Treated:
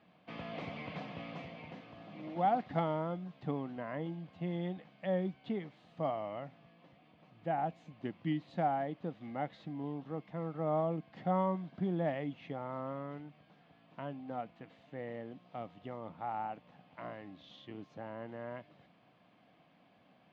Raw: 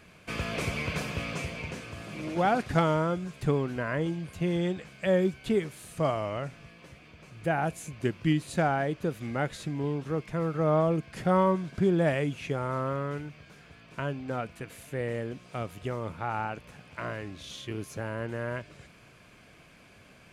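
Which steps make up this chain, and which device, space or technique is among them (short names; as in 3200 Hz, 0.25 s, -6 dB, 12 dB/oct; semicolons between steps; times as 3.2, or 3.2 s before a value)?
dynamic EQ 2100 Hz, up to +4 dB, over -52 dBFS, Q 5.1; kitchen radio (speaker cabinet 170–3600 Hz, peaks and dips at 180 Hz +4 dB, 280 Hz +4 dB, 400 Hz -7 dB, 760 Hz +8 dB, 1500 Hz -8 dB, 2400 Hz -9 dB); gain -9 dB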